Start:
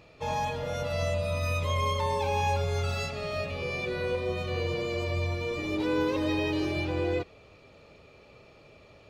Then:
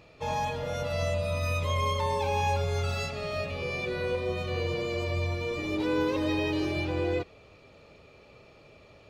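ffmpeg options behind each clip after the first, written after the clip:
-af anull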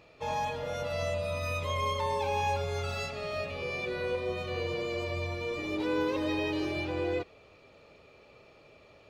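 -af "bass=f=250:g=-5,treble=f=4k:g=-2,volume=-1.5dB"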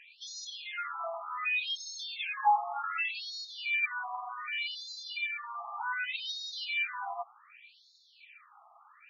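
-af "afftfilt=real='re*between(b*sr/1024,920*pow(5100/920,0.5+0.5*sin(2*PI*0.66*pts/sr))/1.41,920*pow(5100/920,0.5+0.5*sin(2*PI*0.66*pts/sr))*1.41)':imag='im*between(b*sr/1024,920*pow(5100/920,0.5+0.5*sin(2*PI*0.66*pts/sr))/1.41,920*pow(5100/920,0.5+0.5*sin(2*PI*0.66*pts/sr))*1.41)':win_size=1024:overlap=0.75,volume=8.5dB"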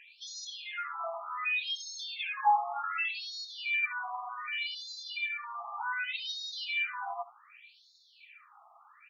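-af "aecho=1:1:70:0.133"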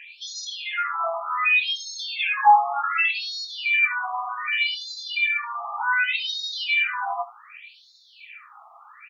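-filter_complex "[0:a]asplit=2[a][b];[b]adelay=24,volume=-10dB[c];[a][c]amix=inputs=2:normalize=0,acrossover=split=2600[d][e];[d]crystalizer=i=7.5:c=0[f];[f][e]amix=inputs=2:normalize=0,volume=6dB"

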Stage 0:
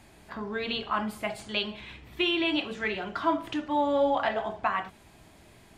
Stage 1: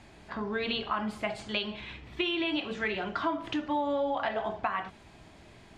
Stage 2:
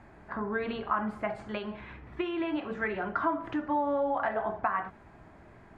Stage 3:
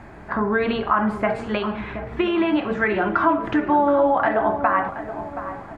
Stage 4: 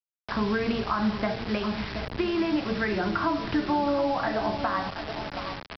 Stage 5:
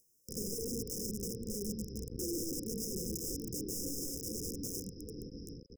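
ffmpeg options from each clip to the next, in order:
-af "lowpass=6.3k,acompressor=threshold=-28dB:ratio=6,volume=1.5dB"
-af "highshelf=f=2.3k:t=q:w=1.5:g=-13"
-filter_complex "[0:a]asplit=2[a][b];[b]alimiter=limit=-23.5dB:level=0:latency=1,volume=-0.5dB[c];[a][c]amix=inputs=2:normalize=0,asplit=2[d][e];[e]adelay=725,lowpass=f=1.4k:p=1,volume=-10.5dB,asplit=2[f][g];[g]adelay=725,lowpass=f=1.4k:p=1,volume=0.46,asplit=2[h][i];[i]adelay=725,lowpass=f=1.4k:p=1,volume=0.46,asplit=2[j][k];[k]adelay=725,lowpass=f=1.4k:p=1,volume=0.46,asplit=2[l][m];[m]adelay=725,lowpass=f=1.4k:p=1,volume=0.46[n];[d][f][h][j][l][n]amix=inputs=6:normalize=0,volume=6dB"
-filter_complex "[0:a]aresample=11025,acrusher=bits=4:mix=0:aa=0.000001,aresample=44100,acrossover=split=220[a][b];[b]acompressor=threshold=-40dB:ratio=1.5[c];[a][c]amix=inputs=2:normalize=0"
-af "acompressor=mode=upward:threshold=-38dB:ratio=2.5,aeval=exprs='(mod(14.1*val(0)+1,2)-1)/14.1':c=same,afftfilt=real='re*(1-between(b*sr/4096,530,5000))':imag='im*(1-between(b*sr/4096,530,5000))':win_size=4096:overlap=0.75,volume=-6.5dB"

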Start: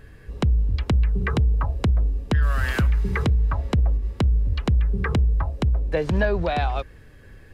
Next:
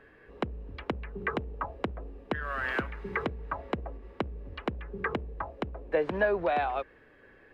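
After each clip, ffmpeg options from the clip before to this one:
-filter_complex "[0:a]acrossover=split=260 2900:gain=0.1 1 0.0891[a][b][c];[a][b][c]amix=inputs=3:normalize=0,volume=-2dB"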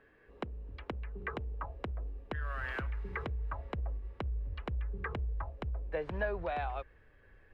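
-af "asubboost=boost=6.5:cutoff=100,volume=-7.5dB"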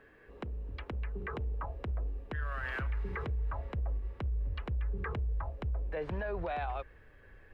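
-af "alimiter=level_in=9dB:limit=-24dB:level=0:latency=1:release=28,volume=-9dB,volume=4.5dB"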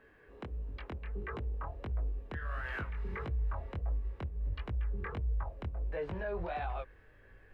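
-af "flanger=delay=17.5:depth=7.1:speed=1.5,volume=1dB"

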